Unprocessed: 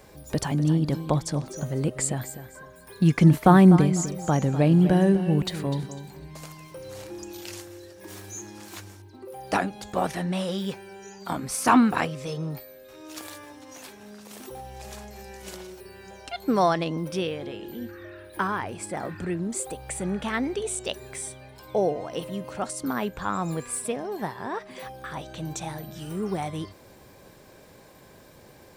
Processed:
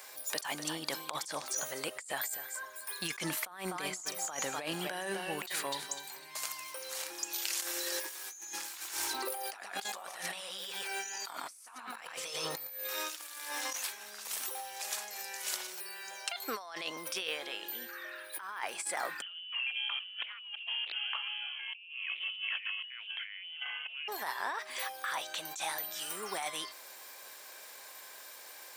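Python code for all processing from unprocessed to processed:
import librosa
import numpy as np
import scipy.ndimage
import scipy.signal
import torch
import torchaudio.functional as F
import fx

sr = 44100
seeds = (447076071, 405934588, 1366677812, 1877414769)

y = fx.chain(x, sr, fx.echo_single(ms=115, db=-6.0),
    fx.env_flatten(amount_pct=50), at=(7.62, 13.73))
y = fx.chain(y, sr, fx.freq_invert(carrier_hz=3200),
    fx.doppler_dist(depth_ms=0.49), at=(19.22, 24.08))
y = scipy.signal.sosfilt(scipy.signal.butter(2, 1100.0, 'highpass', fs=sr, output='sos'), y)
y = fx.high_shelf(y, sr, hz=6000.0, db=6.5)
y = fx.over_compress(y, sr, threshold_db=-39.0, ratio=-1.0)
y = F.gain(torch.from_numpy(y), -1.5).numpy()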